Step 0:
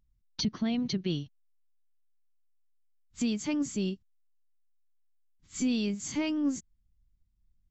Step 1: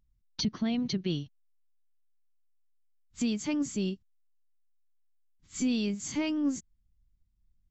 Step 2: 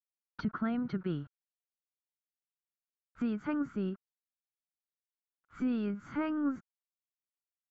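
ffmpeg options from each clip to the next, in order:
-af anull
-af "aeval=exprs='val(0)*gte(abs(val(0)),0.002)':c=same,lowpass=f=1.4k:t=q:w=10,volume=-3.5dB"

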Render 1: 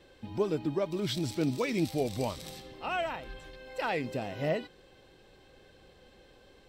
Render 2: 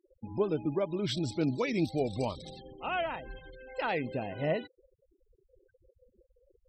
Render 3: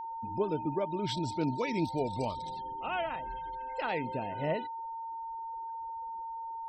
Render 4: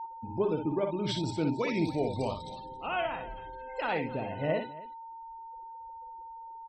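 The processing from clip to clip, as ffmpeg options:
-af "afftfilt=real='re*gte(hypot(re,im),0.00794)':imag='im*gte(hypot(re,im),0.00794)':win_size=1024:overlap=0.75"
-af "aeval=exprs='val(0)+0.0178*sin(2*PI*910*n/s)':c=same,volume=-2dB"
-af "afftdn=nr=19:nf=-54,aecho=1:1:50|60|271:0.237|0.473|0.112,volume=1.5dB"

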